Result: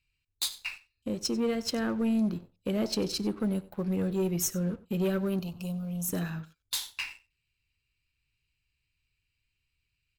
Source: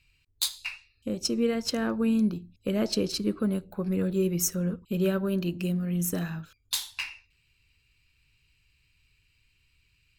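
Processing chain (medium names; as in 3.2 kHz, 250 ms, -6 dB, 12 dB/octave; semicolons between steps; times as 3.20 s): waveshaping leveller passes 2; 5.39–6.09 s: static phaser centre 760 Hz, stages 4; delay 94 ms -20 dB; trim -8.5 dB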